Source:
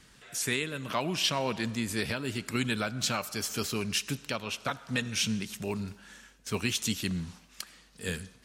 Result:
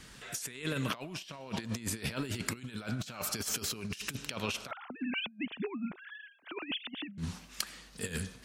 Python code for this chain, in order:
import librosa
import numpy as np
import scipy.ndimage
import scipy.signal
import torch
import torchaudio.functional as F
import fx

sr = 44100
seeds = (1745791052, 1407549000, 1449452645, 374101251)

y = fx.sine_speech(x, sr, at=(4.71, 7.18))
y = fx.over_compress(y, sr, threshold_db=-37.0, ratio=-0.5)